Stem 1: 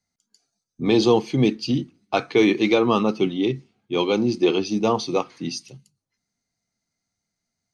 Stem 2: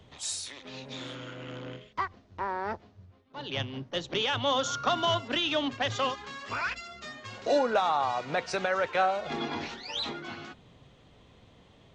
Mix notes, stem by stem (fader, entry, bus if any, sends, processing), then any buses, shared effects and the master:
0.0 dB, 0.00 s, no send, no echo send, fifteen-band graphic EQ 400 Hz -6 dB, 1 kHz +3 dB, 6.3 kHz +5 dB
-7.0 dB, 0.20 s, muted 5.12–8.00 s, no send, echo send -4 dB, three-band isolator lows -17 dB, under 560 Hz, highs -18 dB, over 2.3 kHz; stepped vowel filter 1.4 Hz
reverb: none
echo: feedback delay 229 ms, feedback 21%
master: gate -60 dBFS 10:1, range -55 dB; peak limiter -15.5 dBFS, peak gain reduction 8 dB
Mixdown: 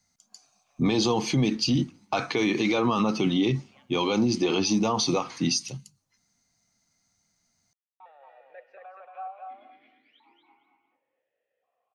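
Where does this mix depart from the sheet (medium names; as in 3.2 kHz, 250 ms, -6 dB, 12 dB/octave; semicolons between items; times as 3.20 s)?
stem 1 0.0 dB -> +6.5 dB; master: missing gate -60 dBFS 10:1, range -55 dB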